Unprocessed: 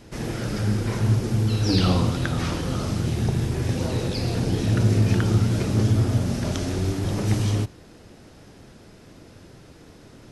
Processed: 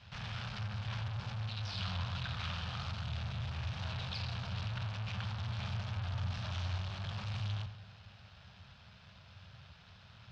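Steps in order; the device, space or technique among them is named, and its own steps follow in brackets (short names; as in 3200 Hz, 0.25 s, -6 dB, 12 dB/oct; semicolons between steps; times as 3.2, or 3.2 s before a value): scooped metal amplifier (tube stage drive 34 dB, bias 0.75; speaker cabinet 81–3800 Hz, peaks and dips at 84 Hz +8 dB, 120 Hz +4 dB, 190 Hz +5 dB, 330 Hz -10 dB, 470 Hz -7 dB, 2000 Hz -7 dB; passive tone stack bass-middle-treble 10-0-10); darkening echo 89 ms, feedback 64%, low-pass 2000 Hz, level -11 dB; gain +7 dB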